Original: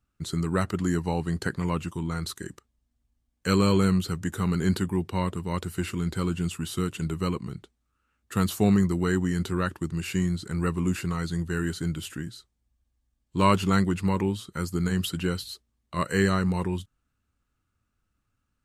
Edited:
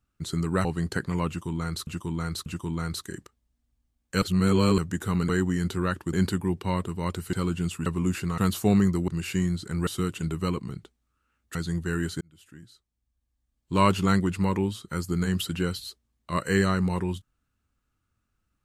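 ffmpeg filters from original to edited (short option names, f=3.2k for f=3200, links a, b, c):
-filter_complex "[0:a]asplit=15[a][b][c][d][e][f][g][h][i][j][k][l][m][n][o];[a]atrim=end=0.652[p];[b]atrim=start=1.148:end=2.372[q];[c]atrim=start=1.778:end=2.372[r];[d]atrim=start=1.778:end=3.542[s];[e]atrim=start=3.538:end=4.102,asetpts=PTS-STARTPTS,areverse[t];[f]atrim=start=4.098:end=4.612[u];[g]atrim=start=9.038:end=9.882[v];[h]atrim=start=4.608:end=5.812[w];[i]atrim=start=6.128:end=6.662[x];[j]atrim=start=10.668:end=11.192[y];[k]atrim=start=8.338:end=9.042[z];[l]atrim=start=9.878:end=10.672[aa];[m]atrim=start=6.658:end=8.342[ab];[n]atrim=start=11.188:end=11.85,asetpts=PTS-STARTPTS,afade=t=out:st=0.658:d=0.004:c=hsin[ac];[o]atrim=start=11.85,asetpts=PTS-STARTPTS,afade=t=in:d=1.66[ad];[p][q]acrossfade=d=0.004:c1=hsin:c2=hsin[ae];[ae][r]acrossfade=d=0.004:c1=hsin:c2=hsin[af];[af][s]acrossfade=d=0.004:c1=hsin:c2=hsin[ag];[ag][t]acrossfade=d=0.004:c1=hsin:c2=hsin[ah];[ah][u]acrossfade=d=0.004:c1=hsin:c2=hsin[ai];[ai][v]acrossfade=d=0.004:c1=hsin:c2=hsin[aj];[aj][w]acrossfade=d=0.004:c1=hsin:c2=hsin[ak];[ak][x]acrossfade=d=0.004:c1=hsin:c2=hsin[al];[al][y]acrossfade=d=0.004:c1=hsin:c2=hsin[am];[am][z]acrossfade=d=0.004:c1=hsin:c2=hsin[an];[an][aa]acrossfade=d=0.004:c1=hsin:c2=hsin[ao];[ao][ab]acrossfade=d=0.004:c1=hsin:c2=hsin[ap];[ac][ad]concat=n=2:v=0:a=1[aq];[ap][aq]acrossfade=d=0.004:c1=hsin:c2=hsin"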